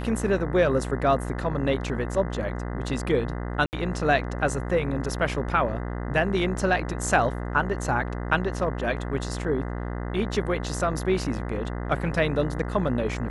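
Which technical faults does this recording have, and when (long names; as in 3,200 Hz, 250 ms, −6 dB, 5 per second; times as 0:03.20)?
mains buzz 60 Hz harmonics 34 −31 dBFS
0:03.66–0:03.73: drop-out 69 ms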